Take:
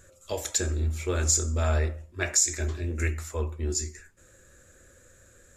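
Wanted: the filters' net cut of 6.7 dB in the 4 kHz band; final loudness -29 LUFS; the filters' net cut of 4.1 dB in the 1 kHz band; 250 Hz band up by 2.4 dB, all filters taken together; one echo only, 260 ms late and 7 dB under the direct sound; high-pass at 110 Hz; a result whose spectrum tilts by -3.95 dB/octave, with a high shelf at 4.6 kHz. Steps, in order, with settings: high-pass 110 Hz; peaking EQ 250 Hz +4 dB; peaking EQ 1 kHz -5.5 dB; peaking EQ 4 kHz -7 dB; treble shelf 4.6 kHz -3.5 dB; delay 260 ms -7 dB; trim +1.5 dB

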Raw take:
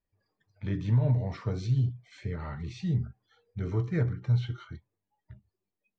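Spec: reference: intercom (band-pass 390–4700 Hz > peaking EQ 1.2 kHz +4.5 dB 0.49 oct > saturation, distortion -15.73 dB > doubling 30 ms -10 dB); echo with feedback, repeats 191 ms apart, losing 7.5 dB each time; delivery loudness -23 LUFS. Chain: band-pass 390–4700 Hz; peaking EQ 1.2 kHz +4.5 dB 0.49 oct; feedback delay 191 ms, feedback 42%, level -7.5 dB; saturation -32 dBFS; doubling 30 ms -10 dB; trim +20.5 dB

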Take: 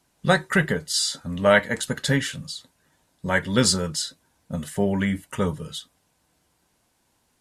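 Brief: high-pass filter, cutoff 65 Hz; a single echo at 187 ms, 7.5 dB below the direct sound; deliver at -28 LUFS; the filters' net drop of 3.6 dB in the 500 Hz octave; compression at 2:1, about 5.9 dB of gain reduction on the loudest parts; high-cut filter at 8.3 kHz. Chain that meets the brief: high-pass 65 Hz; low-pass 8.3 kHz; peaking EQ 500 Hz -4.5 dB; compression 2:1, threshold -24 dBFS; delay 187 ms -7.5 dB

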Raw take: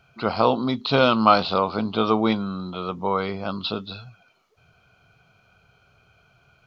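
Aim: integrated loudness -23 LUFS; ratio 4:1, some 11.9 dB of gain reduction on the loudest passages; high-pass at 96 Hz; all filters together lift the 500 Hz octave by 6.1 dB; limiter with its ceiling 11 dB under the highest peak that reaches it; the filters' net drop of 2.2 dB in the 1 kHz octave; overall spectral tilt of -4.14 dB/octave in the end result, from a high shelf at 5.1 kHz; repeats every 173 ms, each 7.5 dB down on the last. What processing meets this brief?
high-pass 96 Hz; peaking EQ 500 Hz +8.5 dB; peaking EQ 1 kHz -6 dB; treble shelf 5.1 kHz +7.5 dB; compression 4:1, threshold -24 dBFS; peak limiter -23.5 dBFS; feedback delay 173 ms, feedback 42%, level -7.5 dB; trim +9.5 dB

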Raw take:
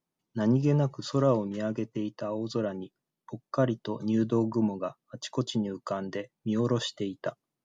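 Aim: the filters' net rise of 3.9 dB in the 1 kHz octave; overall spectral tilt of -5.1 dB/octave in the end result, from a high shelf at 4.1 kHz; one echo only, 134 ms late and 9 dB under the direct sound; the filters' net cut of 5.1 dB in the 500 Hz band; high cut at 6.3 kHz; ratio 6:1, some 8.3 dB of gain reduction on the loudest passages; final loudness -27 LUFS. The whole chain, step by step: low-pass 6.3 kHz; peaking EQ 500 Hz -8.5 dB; peaking EQ 1 kHz +6.5 dB; treble shelf 4.1 kHz +5.5 dB; compression 6:1, threshold -30 dBFS; delay 134 ms -9 dB; trim +9 dB

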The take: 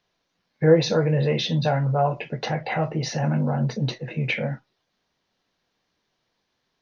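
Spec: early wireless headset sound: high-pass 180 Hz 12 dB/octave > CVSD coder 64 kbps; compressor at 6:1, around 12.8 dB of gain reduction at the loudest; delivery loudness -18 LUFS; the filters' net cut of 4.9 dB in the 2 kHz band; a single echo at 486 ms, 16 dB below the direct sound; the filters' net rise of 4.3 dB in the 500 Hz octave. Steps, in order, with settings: peaking EQ 500 Hz +5 dB; peaking EQ 2 kHz -6.5 dB; compression 6:1, threshold -20 dBFS; high-pass 180 Hz 12 dB/octave; delay 486 ms -16 dB; CVSD coder 64 kbps; trim +9.5 dB

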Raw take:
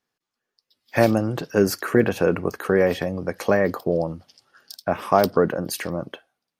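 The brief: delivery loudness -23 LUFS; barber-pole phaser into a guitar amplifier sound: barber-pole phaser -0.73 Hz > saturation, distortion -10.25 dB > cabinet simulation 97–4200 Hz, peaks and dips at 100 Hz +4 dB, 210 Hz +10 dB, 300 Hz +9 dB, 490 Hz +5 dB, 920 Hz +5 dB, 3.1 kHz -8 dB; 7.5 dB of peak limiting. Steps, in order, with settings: peak limiter -11 dBFS; barber-pole phaser -0.73 Hz; saturation -23 dBFS; cabinet simulation 97–4200 Hz, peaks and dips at 100 Hz +4 dB, 210 Hz +10 dB, 300 Hz +9 dB, 490 Hz +5 dB, 920 Hz +5 dB, 3.1 kHz -8 dB; trim +4 dB

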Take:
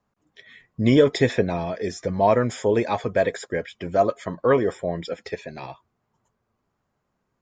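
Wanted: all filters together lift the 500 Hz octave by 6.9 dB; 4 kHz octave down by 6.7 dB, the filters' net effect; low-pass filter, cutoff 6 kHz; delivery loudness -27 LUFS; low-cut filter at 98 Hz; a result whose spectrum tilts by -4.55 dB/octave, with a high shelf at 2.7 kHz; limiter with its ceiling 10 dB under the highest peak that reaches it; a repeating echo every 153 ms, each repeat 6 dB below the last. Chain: high-pass 98 Hz; low-pass 6 kHz; peaking EQ 500 Hz +8.5 dB; treble shelf 2.7 kHz -3.5 dB; peaking EQ 4 kHz -5 dB; peak limiter -8.5 dBFS; feedback delay 153 ms, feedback 50%, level -6 dB; trim -7.5 dB

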